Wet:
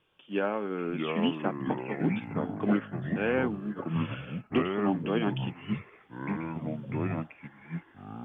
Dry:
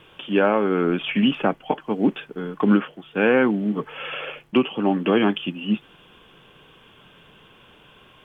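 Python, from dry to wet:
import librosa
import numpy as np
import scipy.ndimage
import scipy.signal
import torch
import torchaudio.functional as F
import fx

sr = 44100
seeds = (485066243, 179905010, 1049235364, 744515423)

y = fx.echo_pitch(x, sr, ms=544, semitones=-4, count=3, db_per_echo=-3.0)
y = fx.upward_expand(y, sr, threshold_db=-37.0, expansion=1.5)
y = y * librosa.db_to_amplitude(-8.5)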